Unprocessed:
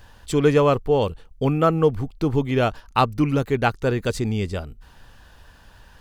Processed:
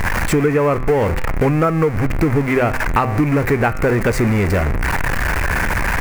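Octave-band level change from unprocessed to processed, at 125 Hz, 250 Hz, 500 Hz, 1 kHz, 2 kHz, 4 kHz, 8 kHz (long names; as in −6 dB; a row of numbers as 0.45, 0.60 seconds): +6.0, +5.0, +3.5, +4.5, +12.5, +1.5, +9.5 decibels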